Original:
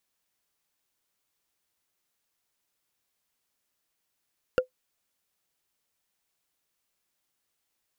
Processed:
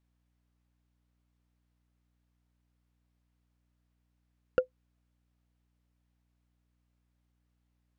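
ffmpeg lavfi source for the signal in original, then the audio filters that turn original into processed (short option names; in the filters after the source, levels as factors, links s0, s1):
-f lavfi -i "aevalsrc='0.2*pow(10,-3*t/0.11)*sin(2*PI*509*t)+0.1*pow(10,-3*t/0.033)*sin(2*PI*1403.3*t)+0.0501*pow(10,-3*t/0.015)*sin(2*PI*2750.6*t)+0.0251*pow(10,-3*t/0.008)*sin(2*PI*4546.9*t)+0.0126*pow(10,-3*t/0.005)*sin(2*PI*6790.1*t)':d=0.45:s=44100"
-af "lowpass=f=1600:p=1,aeval=exprs='val(0)+0.0002*(sin(2*PI*60*n/s)+sin(2*PI*2*60*n/s)/2+sin(2*PI*3*60*n/s)/3+sin(2*PI*4*60*n/s)/4+sin(2*PI*5*60*n/s)/5)':c=same"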